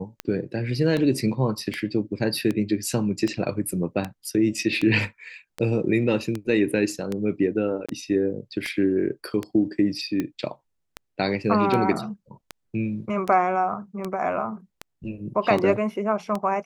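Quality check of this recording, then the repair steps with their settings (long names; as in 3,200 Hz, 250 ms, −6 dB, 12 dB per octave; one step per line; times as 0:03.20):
scratch tick 78 rpm −14 dBFS
0:07.86–0:07.89: drop-out 26 ms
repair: click removal
repair the gap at 0:07.86, 26 ms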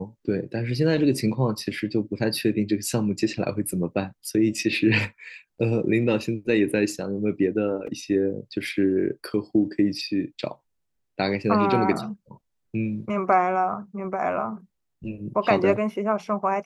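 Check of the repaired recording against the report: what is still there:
none of them is left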